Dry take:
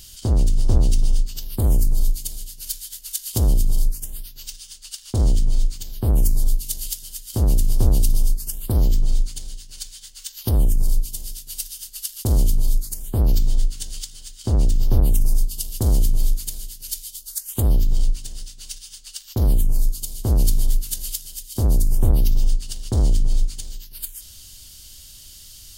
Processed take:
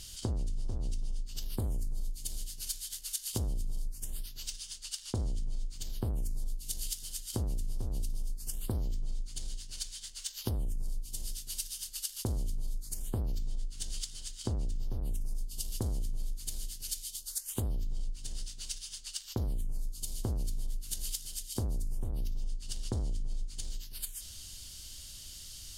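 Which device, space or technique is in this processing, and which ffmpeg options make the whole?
serial compression, peaks first: -af "lowpass=11000,acompressor=threshold=0.0794:ratio=6,acompressor=threshold=0.0282:ratio=2,volume=0.708"

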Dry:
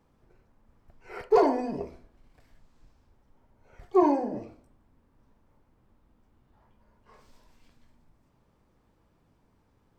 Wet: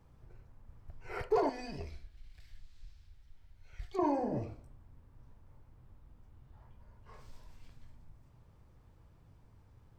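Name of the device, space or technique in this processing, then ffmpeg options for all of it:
car stereo with a boomy subwoofer: -filter_complex "[0:a]lowshelf=f=160:t=q:w=1.5:g=8,alimiter=limit=0.0891:level=0:latency=1:release=231,asettb=1/sr,asplit=3[s0][s1][s2];[s0]atrim=end=1.494[s3];[s1]atrim=start=1.49:end=3.99,asetpts=PTS-STARTPTS,afade=t=in:d=0.004:c=qsin,afade=t=out:st=2.496:d=0.004:c=qsin,equalizer=f=125:t=o:w=1:g=-8,equalizer=f=250:t=o:w=1:g=-7,equalizer=f=500:t=o:w=1:g=-10,equalizer=f=1000:t=o:w=1:g=-10,equalizer=f=2000:t=o:w=1:g=3,equalizer=f=4000:t=o:w=1:g=8[s4];[s2]atrim=start=3.986[s5];[s3][s4]acrossfade=d=0.004:c1=hsin:c2=qsin[s6];[s6][s5]acrossfade=d=0.004:c1=qsin:c2=hsin"

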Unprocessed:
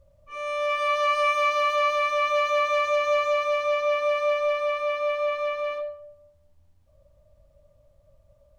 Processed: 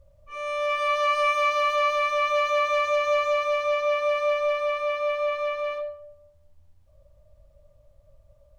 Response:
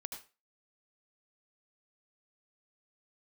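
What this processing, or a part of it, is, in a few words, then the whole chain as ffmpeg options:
low shelf boost with a cut just above: -af "lowshelf=f=66:g=5.5,equalizer=f=230:t=o:w=0.65:g=-5"

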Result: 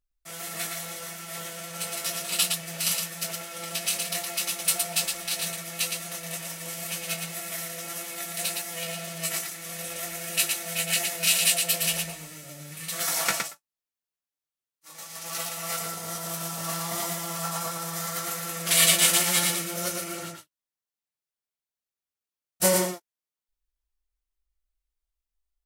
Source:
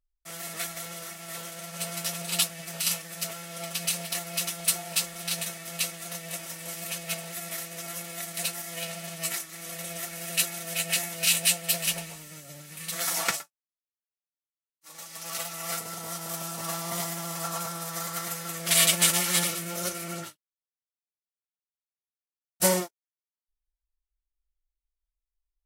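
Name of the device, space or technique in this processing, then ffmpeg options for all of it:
slapback doubling: -filter_complex "[0:a]asplit=3[s0][s1][s2];[s1]adelay=20,volume=0.447[s3];[s2]adelay=115,volume=0.631[s4];[s0][s3][s4]amix=inputs=3:normalize=0"

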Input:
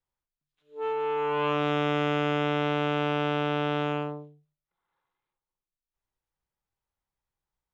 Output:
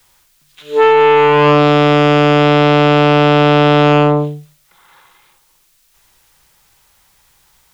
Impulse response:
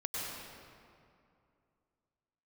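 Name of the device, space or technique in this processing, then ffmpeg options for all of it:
mastering chain: -filter_complex "[0:a]equalizer=f=150:t=o:w=0.77:g=2,acrossover=split=240|840[s0][s1][s2];[s0]acompressor=threshold=0.0158:ratio=4[s3];[s1]acompressor=threshold=0.0224:ratio=4[s4];[s2]acompressor=threshold=0.00631:ratio=4[s5];[s3][s4][s5]amix=inputs=3:normalize=0,acompressor=threshold=0.0112:ratio=2,asoftclip=type=tanh:threshold=0.0299,tiltshelf=f=1200:g=-6,alimiter=level_in=56.2:limit=0.891:release=50:level=0:latency=1,volume=0.891"

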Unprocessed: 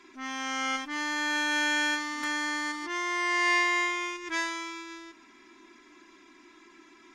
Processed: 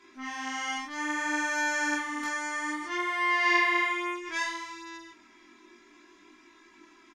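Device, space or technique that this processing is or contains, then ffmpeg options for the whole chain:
double-tracked vocal: -filter_complex "[0:a]asplit=2[s0][s1];[s1]adelay=20,volume=0.668[s2];[s0][s2]amix=inputs=2:normalize=0,flanger=delay=18:depth=7.5:speed=0.61"

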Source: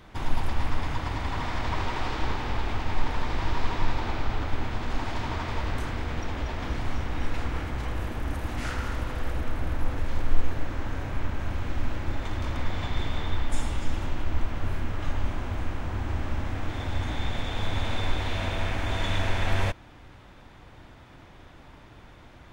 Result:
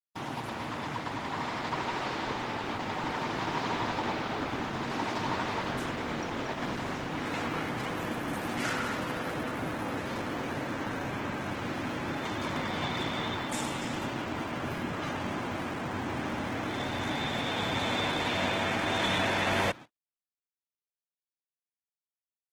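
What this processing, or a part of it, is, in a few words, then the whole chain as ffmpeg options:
video call: -af "highpass=f=140:w=0.5412,highpass=f=140:w=1.3066,dynaudnorm=f=640:g=9:m=1.5,agate=range=0.002:threshold=0.00794:ratio=16:detection=peak" -ar 48000 -c:a libopus -b:a 16k

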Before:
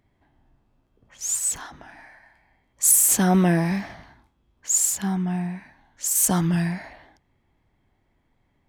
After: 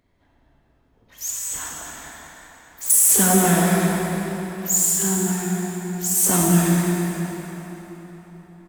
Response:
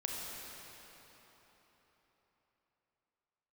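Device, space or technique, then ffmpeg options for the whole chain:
shimmer-style reverb: -filter_complex "[0:a]asettb=1/sr,asplit=3[s0][s1][s2];[s0]atrim=end=1.304[s3];[s1]atrim=start=1.3:end=2.9,asetpts=PTS-STARTPTS,afade=t=in:d=0.004:c=qsin,afade=t=out:st=1.596:d=0.004:c=qsin,acrossover=split=3500[s4][s5];[s5]acompressor=threshold=0.0282:ratio=4:attack=1:release=60[s6];[s4][s6]amix=inputs=2:normalize=0[s7];[s2]atrim=start=2.896[s8];[s3][s7]acrossfade=d=0.004:c1=hsin:c2=qsin[s9];[s9][s8]acrossfade=d=0.004:c1=qsin:c2=hsin,equalizer=f=120:w=2.3:g=-4.5,bandreject=f=800:w=13,aecho=1:1:198|396:0.168|0.0319,asplit=2[s10][s11];[s11]asetrate=88200,aresample=44100,atempo=0.5,volume=0.355[s12];[s10][s12]amix=inputs=2:normalize=0[s13];[1:a]atrim=start_sample=2205[s14];[s13][s14]afir=irnorm=-1:irlink=0,volume=1.26"

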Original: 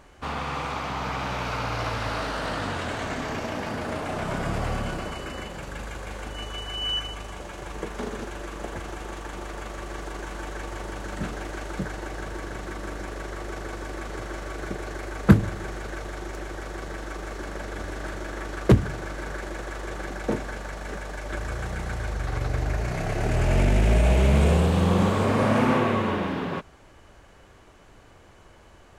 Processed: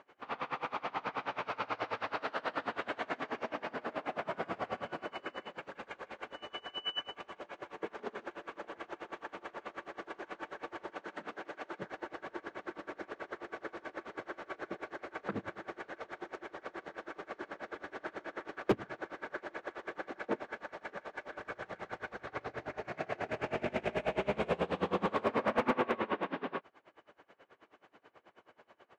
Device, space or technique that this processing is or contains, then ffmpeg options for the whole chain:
helicopter radio: -filter_complex "[0:a]highpass=320,lowpass=2900,aeval=exprs='val(0)*pow(10,-25*(0.5-0.5*cos(2*PI*9.3*n/s))/20)':c=same,asoftclip=type=hard:threshold=0.1,asettb=1/sr,asplit=3[s0][s1][s2];[s0]atrim=end=10.914[s3];[s1]atrim=start=10.91:end=11.83,asetpts=PTS-STARTPTS,afade=t=in:d=0.004:c=qsin,afade=t=out:st=0.916:d=0.004:c=qsin,highpass=f=140:p=1[s4];[s2]atrim=start=11.826[s5];[s3][s4]acrossfade=d=0.004:c1=hsin:c2=qsin[s6];[s6][s5]acrossfade=d=0.004:c1=qsin:c2=hsin,volume=0.891"

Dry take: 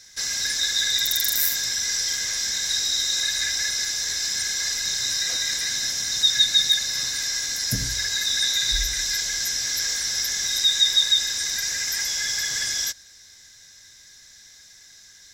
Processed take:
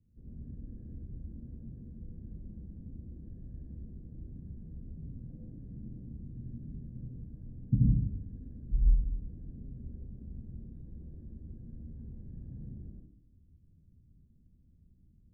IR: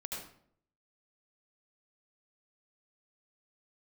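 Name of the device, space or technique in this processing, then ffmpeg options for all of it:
next room: -filter_complex "[0:a]lowpass=f=250:w=0.5412,lowpass=f=250:w=1.3066[s0];[1:a]atrim=start_sample=2205[s1];[s0][s1]afir=irnorm=-1:irlink=0,volume=2"

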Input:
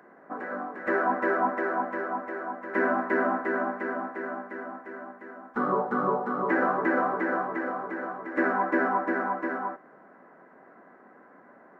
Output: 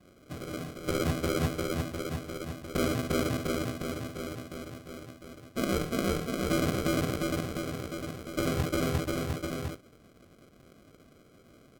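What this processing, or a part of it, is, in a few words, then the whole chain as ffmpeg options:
crushed at another speed: -af "asetrate=55125,aresample=44100,acrusher=samples=39:mix=1:aa=0.000001,asetrate=35280,aresample=44100,volume=0.668"

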